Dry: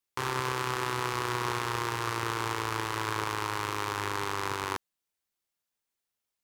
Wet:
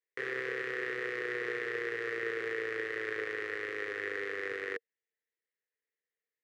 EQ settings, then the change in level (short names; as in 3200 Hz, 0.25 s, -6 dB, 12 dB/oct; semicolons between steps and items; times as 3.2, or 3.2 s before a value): double band-pass 930 Hz, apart 2 oct; +6.5 dB